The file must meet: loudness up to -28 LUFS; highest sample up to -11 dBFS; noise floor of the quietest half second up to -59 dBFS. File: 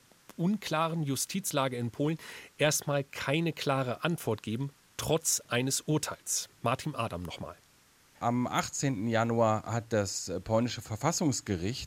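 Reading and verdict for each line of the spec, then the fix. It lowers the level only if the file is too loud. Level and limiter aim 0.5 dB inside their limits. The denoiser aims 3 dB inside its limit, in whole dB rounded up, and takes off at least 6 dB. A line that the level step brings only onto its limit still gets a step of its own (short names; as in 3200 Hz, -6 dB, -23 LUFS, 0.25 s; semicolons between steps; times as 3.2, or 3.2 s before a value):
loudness -31.0 LUFS: OK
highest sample -12.5 dBFS: OK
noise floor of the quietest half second -63 dBFS: OK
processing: none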